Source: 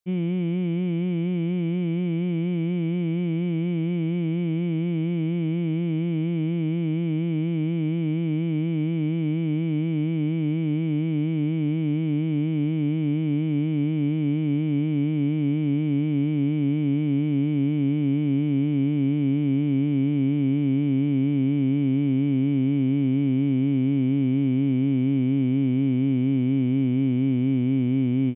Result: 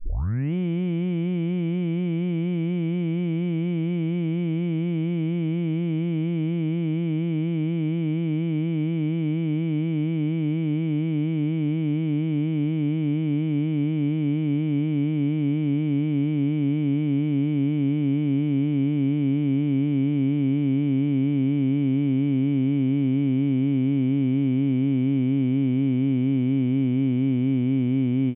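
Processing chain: tape start-up on the opening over 0.53 s

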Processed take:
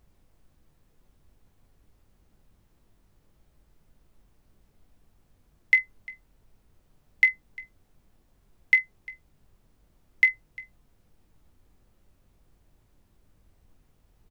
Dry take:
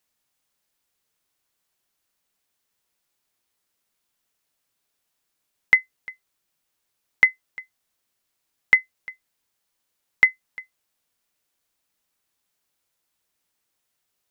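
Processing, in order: steep high-pass 1.9 kHz 48 dB/octave; added noise brown -58 dBFS; on a send: early reflections 20 ms -9.5 dB, 46 ms -18 dB; on the sum: trim -2.5 dB

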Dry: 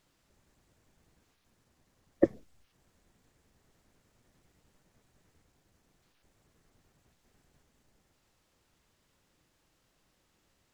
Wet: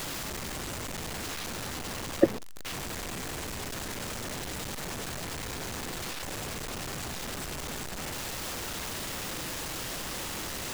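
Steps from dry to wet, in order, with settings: jump at every zero crossing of -32.5 dBFS; bass shelf 210 Hz -3.5 dB; trim +3 dB

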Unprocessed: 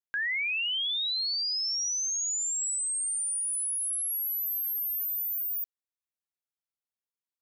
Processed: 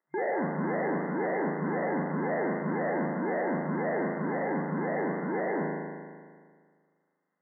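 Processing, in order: sample-and-hold 35×; crackle 270 per s -62 dBFS; spring tank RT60 1.8 s, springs 38 ms, chirp 60 ms, DRR -1.5 dB; hard clipper -25.5 dBFS, distortion -12 dB; FFT band-pass 140–2100 Hz

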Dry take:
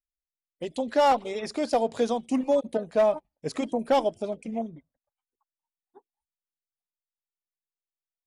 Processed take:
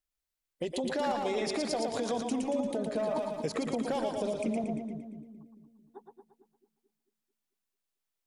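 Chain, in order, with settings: peak limiter -26 dBFS, peak gain reduction 11.5 dB; compression, threshold -34 dBFS, peak gain reduction 6 dB; two-band feedback delay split 360 Hz, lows 222 ms, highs 115 ms, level -4 dB; 3.16–4.64 s: three bands compressed up and down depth 70%; trim +4.5 dB

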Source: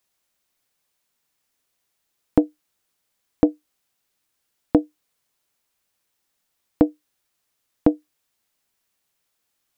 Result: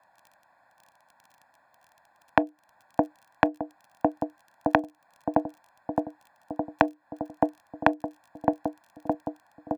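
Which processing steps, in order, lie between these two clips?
local Wiener filter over 15 samples; on a send: filtered feedback delay 615 ms, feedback 72%, low-pass 1.4 kHz, level -20.5 dB; on the sum: compression 6:1, threshold -28 dBFS, peak gain reduction 16 dB; three-band isolator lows -16 dB, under 500 Hz, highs -17 dB, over 2.2 kHz; crackle 23 per s -67 dBFS; high-pass 100 Hz 12 dB/octave; comb 1.2 ms, depth 95%; loudness maximiser +25 dB; trim -1 dB

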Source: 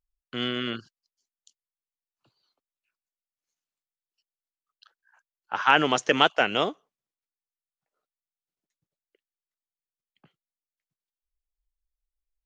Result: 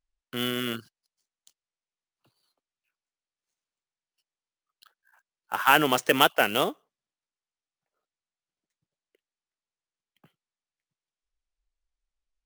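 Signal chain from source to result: sample-rate reducer 15 kHz, jitter 20%

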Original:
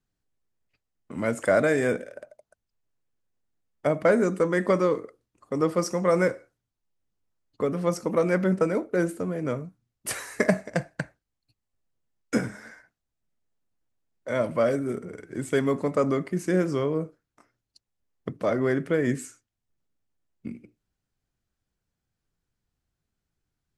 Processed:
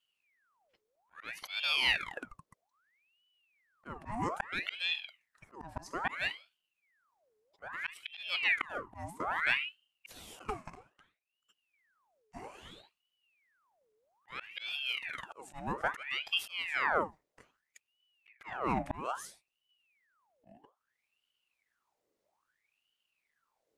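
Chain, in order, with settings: slow attack 607 ms; ring modulator with a swept carrier 1.7 kHz, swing 75%, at 0.61 Hz; trim +2 dB

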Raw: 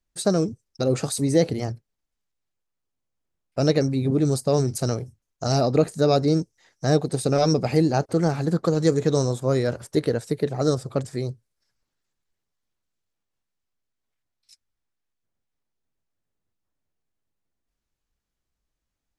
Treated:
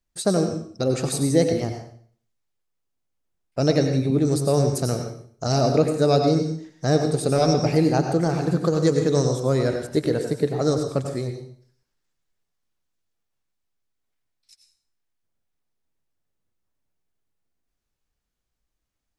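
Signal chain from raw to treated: plate-style reverb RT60 0.53 s, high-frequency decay 0.95×, pre-delay 80 ms, DRR 5 dB

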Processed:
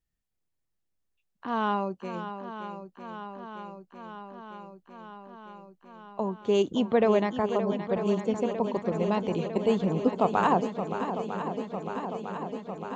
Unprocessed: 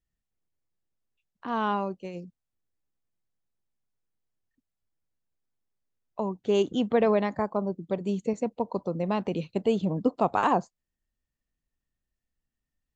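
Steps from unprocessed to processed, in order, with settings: shuffle delay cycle 952 ms, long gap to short 1.5:1, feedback 73%, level -10 dB

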